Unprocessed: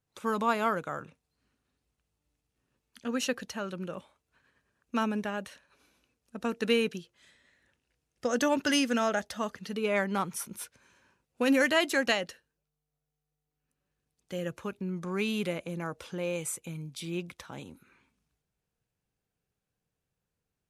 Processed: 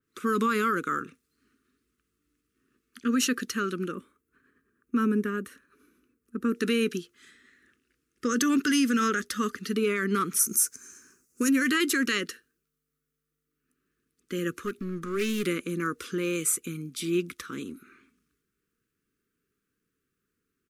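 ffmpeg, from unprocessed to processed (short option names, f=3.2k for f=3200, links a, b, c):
-filter_complex "[0:a]asettb=1/sr,asplit=3[a][b][c];[a]atrim=end=3.924[d];[b]atrim=start=3.92:end=6.55,asetpts=PTS-STARTPTS,afade=t=in:d=0.004:c=qsin,afade=t=out:st=2.626:d=0.004:c=qsin,equalizer=f=4.2k:t=o:w=2.7:g=-12[e];[c]atrim=start=6.546[f];[d][e]acrossfade=d=0.004:c1=hsin:c2=qsin[g];[g][f]acrossfade=d=0.004:c1=qsin:c2=hsin,asplit=3[h][i][j];[h]afade=t=out:st=10.39:d=0.02[k];[i]highshelf=f=4.7k:t=q:w=3:g=11,afade=t=in:st=10.39:d=0.02,afade=t=out:st=11.48:d=0.02[l];[j]afade=t=in:st=11.48:d=0.02[m];[k][l][m]amix=inputs=3:normalize=0,asettb=1/sr,asplit=3[n][o][p];[n]atrim=end=14.624[q];[o]atrim=start=14.62:end=15.46,asetpts=PTS-STARTPTS,afade=t=in:d=0.004:c=qsin,afade=t=out:st=0.836:d=0.004:c=qsin,aeval=exprs='clip(val(0),-1,0.00794)':c=same[r];[p]atrim=start=15.456[s];[q][r]acrossfade=d=0.004:c1=hsin:c2=qsin[t];[t][s]acrossfade=d=0.004:c1=qsin:c2=hsin,firequalizer=gain_entry='entry(140,0);entry(250,13);entry(420,11);entry(710,-29);entry(1200,12);entry(2500,5);entry(3900,3);entry(14000,8)':delay=0.05:min_phase=1,alimiter=limit=-16dB:level=0:latency=1:release=38,adynamicequalizer=threshold=0.00631:dfrequency=3400:dqfactor=0.7:tfrequency=3400:tqfactor=0.7:attack=5:release=100:ratio=0.375:range=3:mode=boostabove:tftype=highshelf,volume=-1.5dB"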